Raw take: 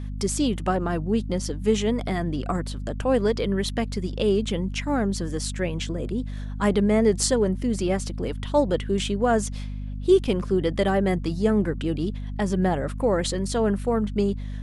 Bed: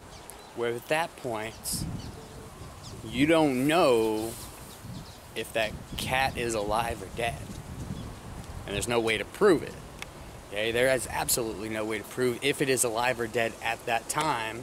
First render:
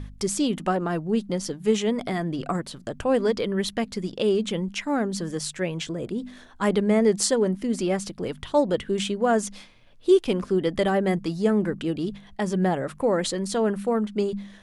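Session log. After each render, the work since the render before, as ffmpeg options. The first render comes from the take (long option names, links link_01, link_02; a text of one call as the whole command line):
ffmpeg -i in.wav -af "bandreject=frequency=50:width_type=h:width=4,bandreject=frequency=100:width_type=h:width=4,bandreject=frequency=150:width_type=h:width=4,bandreject=frequency=200:width_type=h:width=4,bandreject=frequency=250:width_type=h:width=4" out.wav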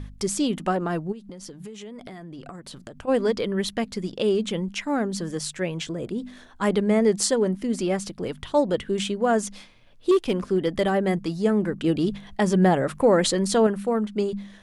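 ffmpeg -i in.wav -filter_complex "[0:a]asplit=3[link_01][link_02][link_03];[link_01]afade=type=out:start_time=1.11:duration=0.02[link_04];[link_02]acompressor=threshold=-35dB:ratio=20:attack=3.2:release=140:knee=1:detection=peak,afade=type=in:start_time=1.11:duration=0.02,afade=type=out:start_time=3.07:duration=0.02[link_05];[link_03]afade=type=in:start_time=3.07:duration=0.02[link_06];[link_04][link_05][link_06]amix=inputs=3:normalize=0,asettb=1/sr,asplit=3[link_07][link_08][link_09];[link_07]atrim=end=10.114[link_10];[link_08]atrim=start=10.11:end=10.81,asetpts=PTS-STARTPTS,afade=type=in:duration=0.004:curve=qsin,afade=type=out:start_time=0.696:duration=0.004:curve=qsin,asoftclip=type=hard:threshold=-14.5dB[link_11];[link_09]atrim=start=10.806[link_12];[link_10][link_11]acrossfade=duration=0.004:curve1=hsin:curve2=qsin[link_13];[link_13][link_12]acrossfade=duration=0.004:curve1=qsin:curve2=hsin,asettb=1/sr,asplit=3[link_14][link_15][link_16];[link_14]atrim=end=11.844[link_17];[link_15]atrim=start=11.84:end=13.67,asetpts=PTS-STARTPTS,afade=type=in:duration=0.004:curve=qsin,afade=type=out:start_time=1.826:duration=0.004:curve=qsin,acontrast=20[link_18];[link_16]atrim=start=13.666[link_19];[link_17][link_18]acrossfade=duration=0.004:curve1=hsin:curve2=qsin[link_20];[link_20][link_19]acrossfade=duration=0.004:curve1=qsin:curve2=hsin" out.wav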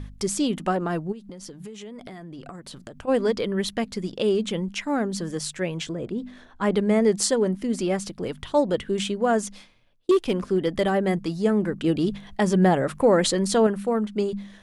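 ffmpeg -i in.wav -filter_complex "[0:a]asettb=1/sr,asplit=3[link_01][link_02][link_03];[link_01]atrim=end=5.944[link_04];[link_02]atrim=start=5.94:end=6.76,asetpts=PTS-STARTPTS,afade=type=in:duration=0.004:curve=qsin,afade=type=out:start_time=0.816:duration=0.004:curve=qsin,lowpass=frequency=3200:poles=1[link_05];[link_03]atrim=start=6.756[link_06];[link_04][link_05]acrossfade=duration=0.004:curve1=hsin:curve2=qsin[link_07];[link_07][link_06]acrossfade=duration=0.004:curve1=qsin:curve2=hsin,asplit=2[link_08][link_09];[link_08]atrim=end=10.09,asetpts=PTS-STARTPTS,afade=type=out:start_time=9.17:duration=0.92:curve=qsin[link_10];[link_09]atrim=start=10.09,asetpts=PTS-STARTPTS,afade=type=in:duration=0.004:curve=hsin[link_11];[link_10][link_11]concat=n=2:v=0:a=1" out.wav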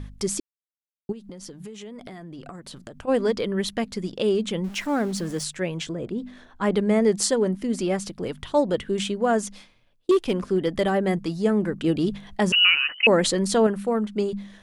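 ffmpeg -i in.wav -filter_complex "[0:a]asettb=1/sr,asplit=3[link_01][link_02][link_03];[link_01]atrim=end=4.644[link_04];[link_02]atrim=start=4.64:end=5.44,asetpts=PTS-STARTPTS,afade=type=in:duration=0.004:curve=qsin,afade=type=out:start_time=0.796:duration=0.004:curve=qsin,aeval=exprs='val(0)+0.5*0.0126*sgn(val(0))':channel_layout=same[link_05];[link_03]atrim=start=5.436[link_06];[link_04][link_05]acrossfade=duration=0.004:curve1=hsin:curve2=qsin[link_07];[link_07][link_06]acrossfade=duration=0.004:curve1=qsin:curve2=hsin,asettb=1/sr,asplit=3[link_08][link_09][link_10];[link_08]atrim=end=12.524[link_11];[link_09]atrim=start=12.52:end=13.07,asetpts=PTS-STARTPTS,afade=type=in:duration=0.004:curve=qsin,afade=type=out:start_time=0.546:duration=0.004:curve=qsin,lowpass=frequency=2600:width_type=q:width=0.5098,lowpass=frequency=2600:width_type=q:width=0.6013,lowpass=frequency=2600:width_type=q:width=0.9,lowpass=frequency=2600:width_type=q:width=2.563,afreqshift=-3100[link_12];[link_10]atrim=start=13.066[link_13];[link_11][link_12]acrossfade=duration=0.004:curve1=hsin:curve2=qsin[link_14];[link_14][link_13]acrossfade=duration=0.004:curve1=qsin:curve2=hsin,asplit=3[link_15][link_16][link_17];[link_15]atrim=end=0.4,asetpts=PTS-STARTPTS,afade=type=out:start_time=0.396:duration=0.004:curve=hsin[link_18];[link_16]atrim=start=0.4:end=1.09,asetpts=PTS-STARTPTS,volume=0[link_19];[link_17]atrim=start=1.09,asetpts=PTS-STARTPTS,afade=type=in:duration=0.004:curve=hsin[link_20];[link_18][link_19][link_20]concat=n=3:v=0:a=1" out.wav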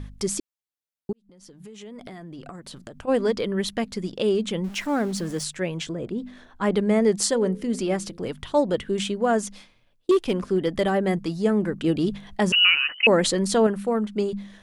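ffmpeg -i in.wav -filter_complex "[0:a]asettb=1/sr,asplit=3[link_01][link_02][link_03];[link_01]atrim=end=7.234[link_04];[link_02]atrim=start=7.23:end=8.28,asetpts=PTS-STARTPTS,afade=type=in:duration=0.004:curve=qsin,afade=type=out:start_time=1.046:duration=0.004:curve=qsin,bandreject=frequency=85.79:width_type=h:width=4,bandreject=frequency=171.58:width_type=h:width=4,bandreject=frequency=257.37:width_type=h:width=4,bandreject=frequency=343.16:width_type=h:width=4,bandreject=frequency=428.95:width_type=h:width=4,bandreject=frequency=514.74:width_type=h:width=4[link_05];[link_03]atrim=start=8.276[link_06];[link_04][link_05]acrossfade=duration=0.004:curve1=hsin:curve2=qsin[link_07];[link_07][link_06]acrossfade=duration=0.004:curve1=qsin:curve2=hsin,asplit=2[link_08][link_09];[link_08]atrim=end=1.13,asetpts=PTS-STARTPTS,afade=type=out:start_time=1.126:duration=0.004:curve=hsin[link_10];[link_09]atrim=start=1.13,asetpts=PTS-STARTPTS,afade=type=in:duration=0.87[link_11];[link_10][link_11]concat=n=2:v=0:a=1" out.wav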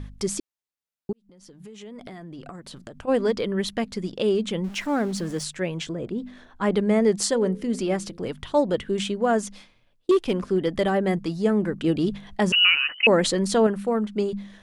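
ffmpeg -i in.wav -af "highshelf=frequency=8600:gain=-4.5" out.wav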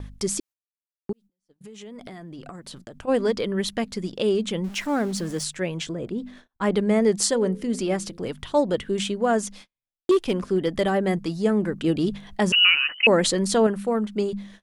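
ffmpeg -i in.wav -af "agate=range=-35dB:threshold=-45dB:ratio=16:detection=peak,highshelf=frequency=5400:gain=4.5" out.wav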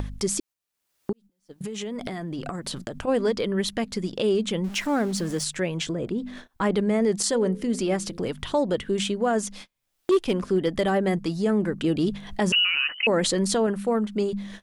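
ffmpeg -i in.wav -af "acompressor=mode=upward:threshold=-23dB:ratio=2.5,alimiter=limit=-14.5dB:level=0:latency=1:release=24" out.wav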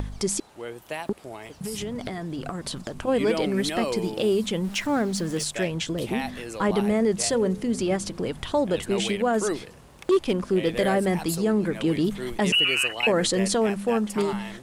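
ffmpeg -i in.wav -i bed.wav -filter_complex "[1:a]volume=-6.5dB[link_01];[0:a][link_01]amix=inputs=2:normalize=0" out.wav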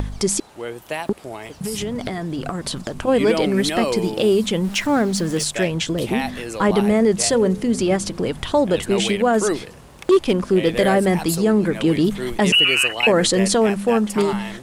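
ffmpeg -i in.wav -af "volume=6dB" out.wav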